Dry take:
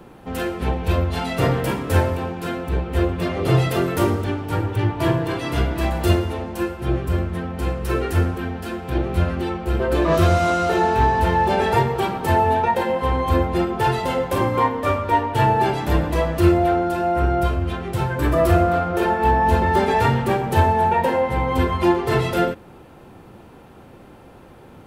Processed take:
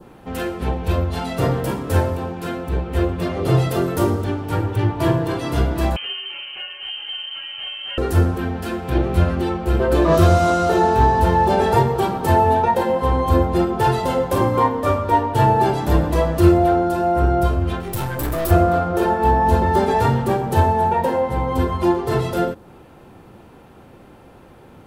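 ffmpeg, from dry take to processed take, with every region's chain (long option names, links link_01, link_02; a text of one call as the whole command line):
ffmpeg -i in.wav -filter_complex "[0:a]asettb=1/sr,asplit=3[link_01][link_02][link_03];[link_01]atrim=end=5.964[link_04];[link_02]atrim=start=5.96:end=7.98,asetpts=PTS-STARTPTS,afade=type=in:duration=0.004:curve=qsin,afade=type=out:start_time=2.016:duration=0.004:curve=qsin,lowpass=frequency=2700:width_type=q:width=0.5098,lowpass=frequency=2700:width_type=q:width=0.6013,lowpass=frequency=2700:width_type=q:width=0.9,lowpass=frequency=2700:width_type=q:width=2.563,afreqshift=-3200,acompressor=threshold=-26dB:ratio=3:attack=3.2:release=140:knee=1:detection=peak[link_05];[link_03]atrim=start=7.976[link_06];[link_04][link_05]acrossfade=duration=0.004:curve1=hsin:curve2=qsin[link_07];[link_07][link_06]acrossfade=duration=0.004:curve1=qsin:curve2=hsin,asettb=1/sr,asplit=3[link_08][link_09][link_10];[link_08]atrim=end=17.804[link_11];[link_09]atrim=start=17.8:end=18.51,asetpts=PTS-STARTPTS,afade=type=in:duration=0.004:curve=qsin,afade=type=out:start_time=0.706:duration=0.004:curve=qsin,aemphasis=mode=production:type=50fm,aeval=exprs='(tanh(12.6*val(0)+0.45)-tanh(0.45))/12.6':channel_layout=same[link_12];[link_10]atrim=start=18.506[link_13];[link_11][link_12]acrossfade=duration=0.004:curve1=hsin:curve2=qsin[link_14];[link_14][link_13]acrossfade=duration=0.004:curve1=qsin:curve2=hsin,adynamicequalizer=threshold=0.00891:dfrequency=2300:dqfactor=1.2:tfrequency=2300:tqfactor=1.2:attack=5:release=100:ratio=0.375:range=4:mode=cutabove:tftype=bell,dynaudnorm=framelen=500:gausssize=21:maxgain=6dB" out.wav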